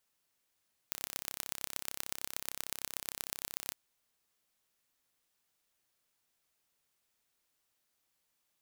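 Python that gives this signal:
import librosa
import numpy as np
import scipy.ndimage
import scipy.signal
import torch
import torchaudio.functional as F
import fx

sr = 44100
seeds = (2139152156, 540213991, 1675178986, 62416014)

y = fx.impulse_train(sr, length_s=2.81, per_s=33.2, accent_every=4, level_db=-7.5)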